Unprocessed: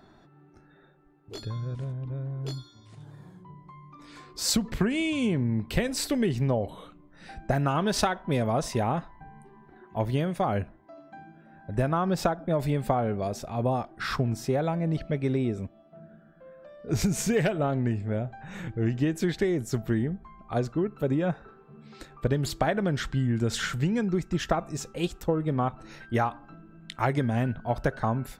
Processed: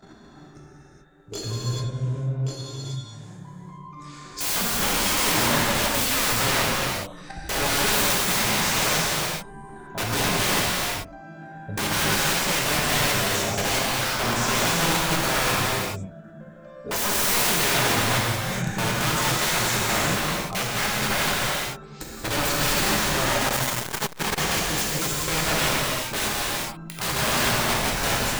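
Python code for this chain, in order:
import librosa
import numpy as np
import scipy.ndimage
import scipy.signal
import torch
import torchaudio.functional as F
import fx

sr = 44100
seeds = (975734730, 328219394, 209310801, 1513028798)

y = fx.peak_eq(x, sr, hz=6900.0, db=11.5, octaves=0.65)
y = fx.level_steps(y, sr, step_db=14)
y = (np.mod(10.0 ** (31.5 / 20.0) * y + 1.0, 2.0) - 1.0) / 10.0 ** (31.5 / 20.0)
y = fx.rev_gated(y, sr, seeds[0], gate_ms=460, shape='flat', drr_db=-5.5)
y = fx.transformer_sat(y, sr, knee_hz=380.0, at=(23.47, 24.38))
y = y * 10.0 ** (8.5 / 20.0)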